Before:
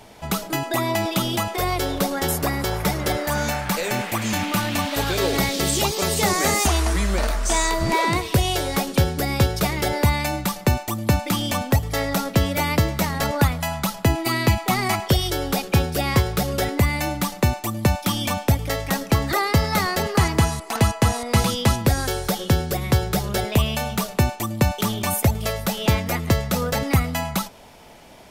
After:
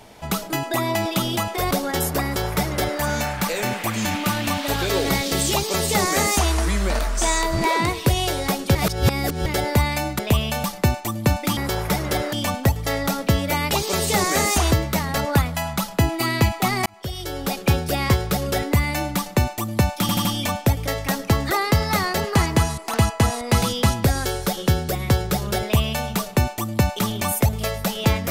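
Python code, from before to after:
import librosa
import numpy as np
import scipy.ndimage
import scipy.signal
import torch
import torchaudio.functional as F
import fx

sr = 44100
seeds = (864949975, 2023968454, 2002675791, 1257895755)

y = fx.edit(x, sr, fx.cut(start_s=1.71, length_s=0.28),
    fx.duplicate(start_s=2.52, length_s=0.76, to_s=11.4),
    fx.duplicate(start_s=5.8, length_s=1.01, to_s=12.78),
    fx.reverse_span(start_s=9.03, length_s=0.71),
    fx.fade_in_span(start_s=14.92, length_s=0.79),
    fx.stutter(start_s=18.07, slice_s=0.08, count=4),
    fx.duplicate(start_s=23.44, length_s=0.45, to_s=10.47), tone=tone)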